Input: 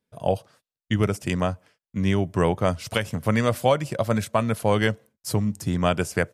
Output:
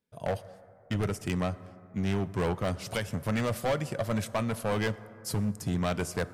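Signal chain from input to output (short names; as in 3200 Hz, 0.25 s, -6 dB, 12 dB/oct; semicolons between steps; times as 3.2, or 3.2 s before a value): overloaded stage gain 19.5 dB; plate-style reverb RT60 3.1 s, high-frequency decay 0.3×, DRR 15.5 dB; gain -4.5 dB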